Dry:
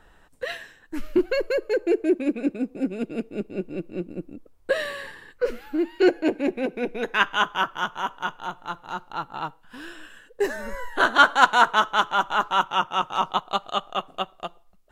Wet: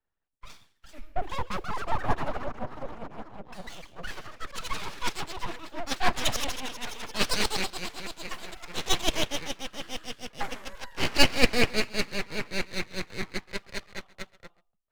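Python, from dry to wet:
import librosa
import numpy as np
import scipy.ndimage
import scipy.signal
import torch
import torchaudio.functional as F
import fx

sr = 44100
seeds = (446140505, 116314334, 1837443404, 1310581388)

p1 = fx.echo_pitch(x, sr, ms=516, semitones=5, count=3, db_per_echo=-3.0)
p2 = fx.dynamic_eq(p1, sr, hz=3200.0, q=6.5, threshold_db=-45.0, ratio=4.0, max_db=6)
p3 = p2 + fx.echo_single(p2, sr, ms=136, db=-19.0, dry=0)
p4 = np.abs(p3)
p5 = fx.band_widen(p4, sr, depth_pct=70)
y = F.gain(torch.from_numpy(p5), -6.5).numpy()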